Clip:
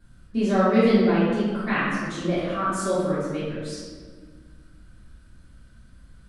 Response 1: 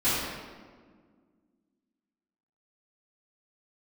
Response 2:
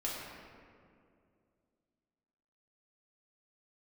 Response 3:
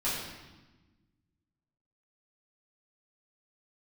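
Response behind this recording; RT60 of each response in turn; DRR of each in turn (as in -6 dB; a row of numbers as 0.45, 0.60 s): 1; 1.7, 2.4, 1.2 s; -17.0, -6.0, -11.0 dB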